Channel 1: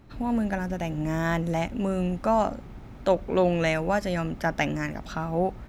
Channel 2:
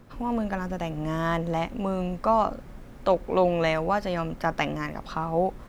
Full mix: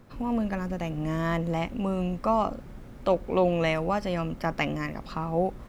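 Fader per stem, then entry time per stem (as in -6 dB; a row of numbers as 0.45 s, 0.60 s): -11.0 dB, -2.0 dB; 0.00 s, 0.00 s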